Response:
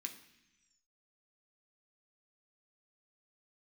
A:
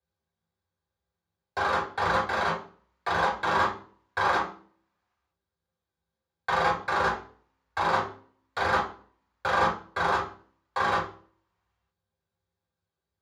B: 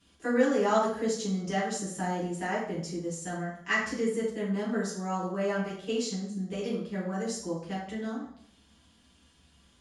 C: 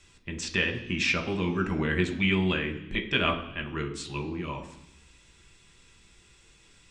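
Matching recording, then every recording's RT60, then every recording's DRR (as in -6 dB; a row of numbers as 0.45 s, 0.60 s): C; 0.45 s, 0.60 s, 0.90 s; -6.5 dB, -7.0 dB, 3.0 dB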